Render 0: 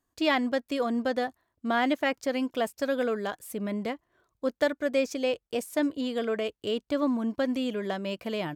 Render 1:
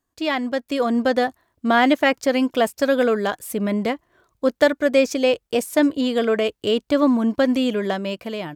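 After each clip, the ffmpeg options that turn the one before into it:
ffmpeg -i in.wav -af "dynaudnorm=framelen=160:gausssize=9:maxgain=8dB,volume=1.5dB" out.wav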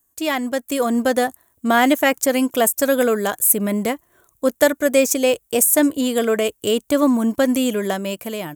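ffmpeg -i in.wav -af "aexciter=amount=9:drive=3.1:freq=6700,volume=1dB" out.wav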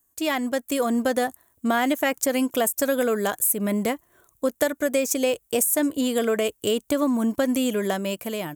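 ffmpeg -i in.wav -af "acompressor=threshold=-17dB:ratio=4,volume=-2dB" out.wav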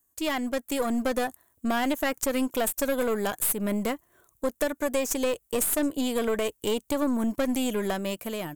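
ffmpeg -i in.wav -af "aeval=exprs='(tanh(7.08*val(0)+0.5)-tanh(0.5))/7.08':channel_layout=same,volume=-1dB" out.wav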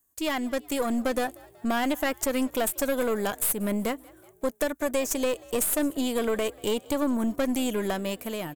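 ffmpeg -i in.wav -filter_complex "[0:a]asplit=5[link_01][link_02][link_03][link_04][link_05];[link_02]adelay=187,afreqshift=55,volume=-23.5dB[link_06];[link_03]adelay=374,afreqshift=110,volume=-28.7dB[link_07];[link_04]adelay=561,afreqshift=165,volume=-33.9dB[link_08];[link_05]adelay=748,afreqshift=220,volume=-39.1dB[link_09];[link_01][link_06][link_07][link_08][link_09]amix=inputs=5:normalize=0" out.wav

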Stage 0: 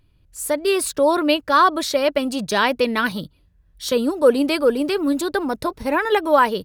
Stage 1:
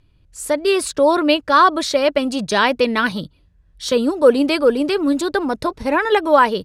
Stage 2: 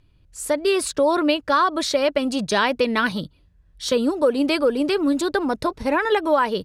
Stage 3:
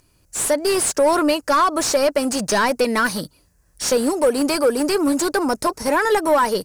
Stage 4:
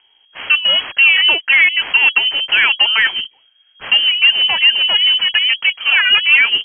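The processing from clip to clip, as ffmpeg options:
ffmpeg -i in.wav -af "lowpass=8700,volume=2.5dB" out.wav
ffmpeg -i in.wav -af "acompressor=threshold=-13dB:ratio=6,volume=-1.5dB" out.wav
ffmpeg -i in.wav -filter_complex "[0:a]aexciter=amount=14.3:drive=7.6:freq=5400,asplit=2[link_01][link_02];[link_02]highpass=frequency=720:poles=1,volume=16dB,asoftclip=type=tanh:threshold=-7dB[link_03];[link_01][link_03]amix=inputs=2:normalize=0,lowpass=frequency=1400:poles=1,volume=-6dB" out.wav
ffmpeg -i in.wav -af "lowpass=frequency=2800:width_type=q:width=0.5098,lowpass=frequency=2800:width_type=q:width=0.6013,lowpass=frequency=2800:width_type=q:width=0.9,lowpass=frequency=2800:width_type=q:width=2.563,afreqshift=-3300,volume=5.5dB" out.wav

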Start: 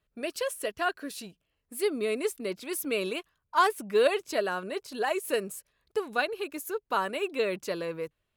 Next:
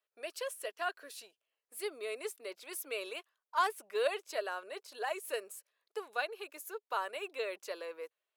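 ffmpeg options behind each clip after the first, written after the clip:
ffmpeg -i in.wav -af "highpass=frequency=450:width=0.5412,highpass=frequency=450:width=1.3066,volume=-7dB" out.wav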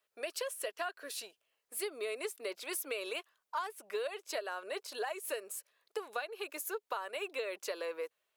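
ffmpeg -i in.wav -af "acompressor=threshold=-41dB:ratio=16,volume=7dB" out.wav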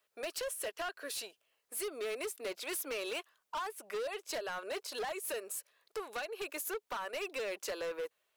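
ffmpeg -i in.wav -af "asoftclip=type=hard:threshold=-37.5dB,volume=3dB" out.wav

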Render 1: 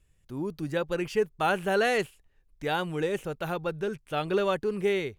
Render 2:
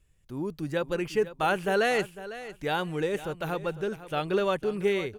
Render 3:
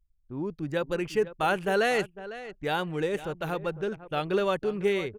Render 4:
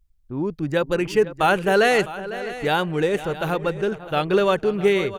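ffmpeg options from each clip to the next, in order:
ffmpeg -i in.wav -af "aecho=1:1:502|1004:0.188|0.0339" out.wav
ffmpeg -i in.wav -af "anlmdn=0.1" out.wav
ffmpeg -i in.wav -af "aecho=1:1:656|1312:0.168|0.0369,volume=7.5dB" out.wav

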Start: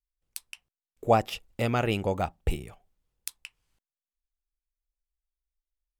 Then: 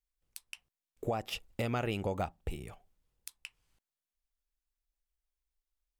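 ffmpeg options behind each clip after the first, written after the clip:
ffmpeg -i in.wav -af "acompressor=threshold=-27dB:ratio=3,alimiter=limit=-23dB:level=0:latency=1:release=281" out.wav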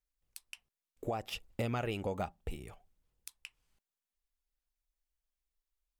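ffmpeg -i in.wav -af "aphaser=in_gain=1:out_gain=1:delay=5:decay=0.24:speed=0.65:type=sinusoidal,volume=-2.5dB" out.wav

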